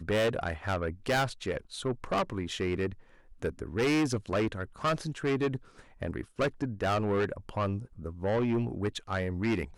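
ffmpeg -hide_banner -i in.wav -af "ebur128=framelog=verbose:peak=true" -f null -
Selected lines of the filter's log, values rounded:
Integrated loudness:
  I:         -31.8 LUFS
  Threshold: -42.0 LUFS
Loudness range:
  LRA:         1.2 LU
  Threshold: -52.1 LUFS
  LRA low:   -32.8 LUFS
  LRA high:  -31.5 LUFS
True peak:
  Peak:      -22.5 dBFS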